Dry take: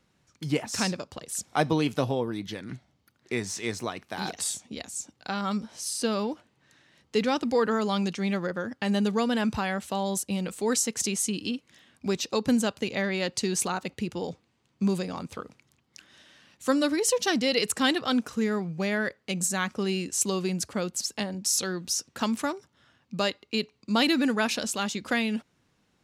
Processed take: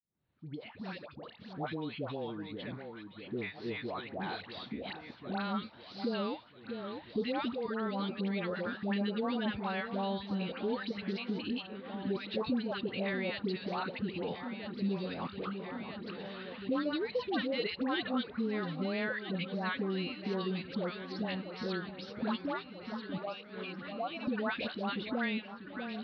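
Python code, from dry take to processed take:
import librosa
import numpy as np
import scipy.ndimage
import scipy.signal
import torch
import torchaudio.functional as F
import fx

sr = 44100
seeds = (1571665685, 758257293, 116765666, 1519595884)

p1 = fx.fade_in_head(x, sr, length_s=5.76)
p2 = scipy.signal.sosfilt(scipy.signal.butter(12, 4300.0, 'lowpass', fs=sr, output='sos'), p1)
p3 = fx.level_steps(p2, sr, step_db=15, at=(7.52, 8.18))
p4 = fx.vowel_filter(p3, sr, vowel='a', at=(23.17, 24.27))
p5 = fx.dispersion(p4, sr, late='highs', ms=120.0, hz=870.0)
p6 = p5 + fx.echo_alternate(p5, sr, ms=645, hz=1400.0, feedback_pct=79, wet_db=-14.0, dry=0)
p7 = fx.band_squash(p6, sr, depth_pct=70)
y = p7 * 10.0 ** (-6.5 / 20.0)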